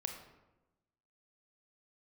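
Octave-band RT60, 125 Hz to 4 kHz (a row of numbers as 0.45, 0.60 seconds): 1.3, 1.2, 1.1, 1.0, 0.80, 0.60 seconds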